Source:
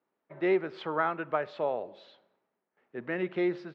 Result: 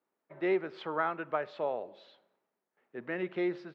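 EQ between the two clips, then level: low shelf 100 Hz -8 dB; -2.5 dB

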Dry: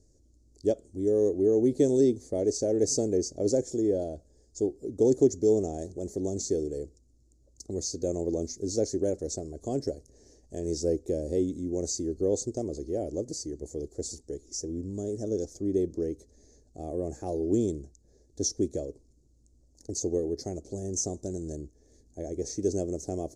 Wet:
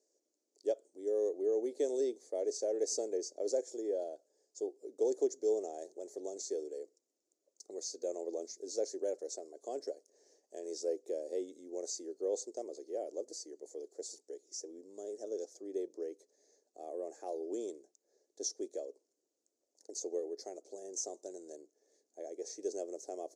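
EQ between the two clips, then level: HPF 430 Hz 24 dB/oct; high shelf 5800 Hz -5.5 dB; -5.0 dB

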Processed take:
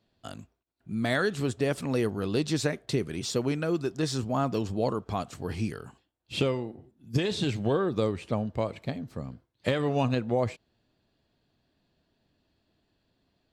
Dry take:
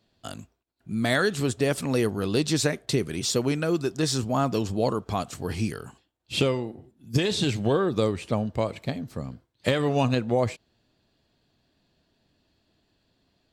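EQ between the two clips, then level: high shelf 4700 Hz -7 dB; -3.0 dB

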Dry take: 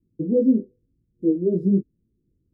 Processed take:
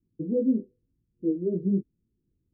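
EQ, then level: air absorption 380 m; -5.5 dB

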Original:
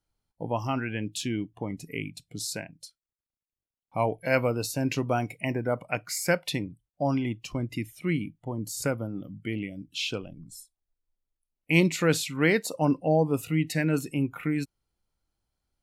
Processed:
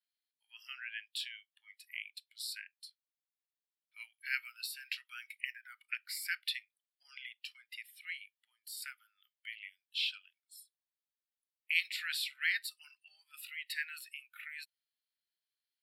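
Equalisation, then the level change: rippled Chebyshev high-pass 1200 Hz, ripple 6 dB; fixed phaser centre 2800 Hz, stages 4; +1.5 dB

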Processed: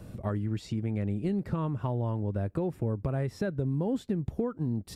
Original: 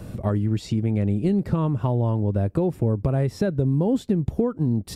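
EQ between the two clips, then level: dynamic EQ 1600 Hz, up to +5 dB, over -44 dBFS, Q 1; -8.5 dB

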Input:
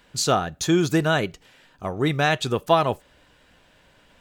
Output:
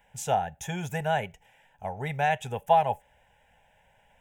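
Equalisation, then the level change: bell 840 Hz +13 dB 0.24 oct; fixed phaser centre 1200 Hz, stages 6; -5.5 dB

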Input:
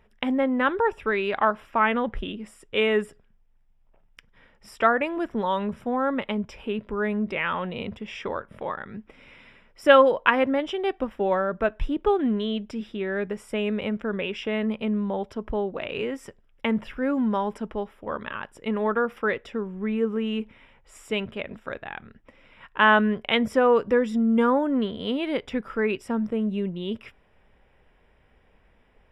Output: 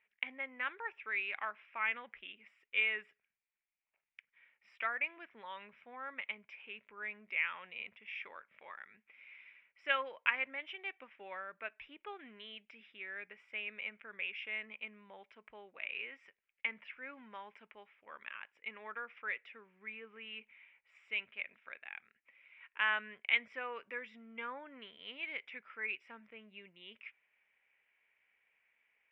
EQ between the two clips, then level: band-pass 2300 Hz, Q 5; air absorption 120 m; 0.0 dB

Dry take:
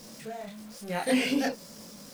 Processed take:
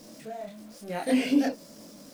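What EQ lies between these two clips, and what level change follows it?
bell 300 Hz +11.5 dB 0.47 oct; bell 630 Hz +8.5 dB 0.3 oct; -4.0 dB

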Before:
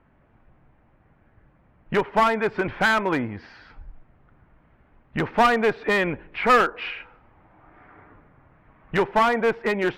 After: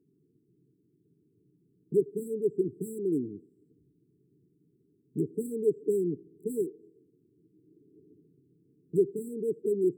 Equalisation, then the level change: HPF 160 Hz 24 dB/oct; brick-wall FIR band-stop 450–7500 Hz; bell 220 Hz -10.5 dB 0.43 oct; 0.0 dB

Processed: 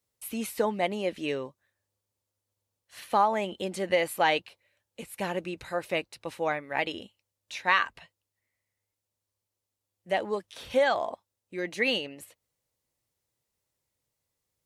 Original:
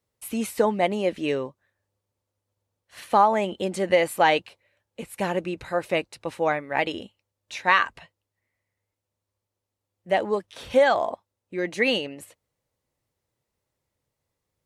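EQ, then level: high shelf 3000 Hz +9.5 dB; dynamic EQ 8100 Hz, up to -7 dB, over -46 dBFS, Q 0.82; -6.0 dB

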